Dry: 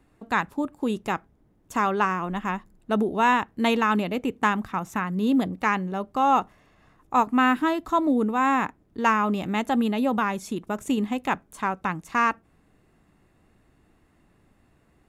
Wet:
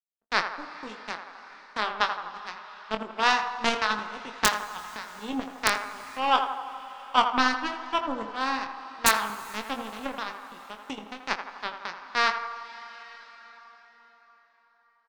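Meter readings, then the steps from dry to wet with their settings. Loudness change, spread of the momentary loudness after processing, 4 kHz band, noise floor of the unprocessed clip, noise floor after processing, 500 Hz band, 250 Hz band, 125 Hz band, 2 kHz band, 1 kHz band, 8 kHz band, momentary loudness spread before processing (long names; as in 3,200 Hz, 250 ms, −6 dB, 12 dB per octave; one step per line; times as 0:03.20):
−3.5 dB, 17 LU, +7.0 dB, −63 dBFS, −65 dBFS, −7.0 dB, −13.0 dB, −16.5 dB, −0.5 dB, −3.5 dB, +9.0 dB, 9 LU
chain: hearing-aid frequency compression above 3,600 Hz 1.5 to 1
low-pass filter 7,700 Hz 12 dB per octave
low-shelf EQ 88 Hz −10.5 dB
power curve on the samples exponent 3
wrap-around overflow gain 11 dB
double-tracking delay 23 ms −8.5 dB
on a send: feedback echo with a band-pass in the loop 82 ms, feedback 64%, band-pass 860 Hz, level −7 dB
on the sum: dense smooth reverb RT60 4.8 s, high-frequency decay 0.7×, DRR 14.5 dB
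one half of a high-frequency compander encoder only
level +7.5 dB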